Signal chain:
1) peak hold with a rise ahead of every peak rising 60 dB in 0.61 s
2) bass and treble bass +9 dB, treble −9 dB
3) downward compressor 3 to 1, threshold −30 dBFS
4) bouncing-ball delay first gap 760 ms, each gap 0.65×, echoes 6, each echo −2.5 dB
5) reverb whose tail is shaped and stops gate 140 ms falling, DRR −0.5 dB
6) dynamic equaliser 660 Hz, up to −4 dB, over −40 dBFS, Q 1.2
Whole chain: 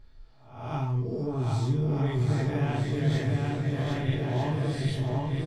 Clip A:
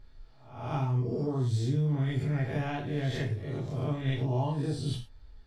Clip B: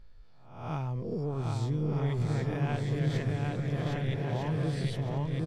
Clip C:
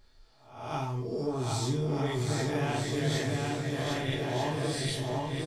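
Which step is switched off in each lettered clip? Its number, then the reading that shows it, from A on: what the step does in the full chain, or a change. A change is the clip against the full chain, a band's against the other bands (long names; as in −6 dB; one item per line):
4, change in momentary loudness spread +4 LU
5, change in integrated loudness −3.5 LU
2, 125 Hz band −7.5 dB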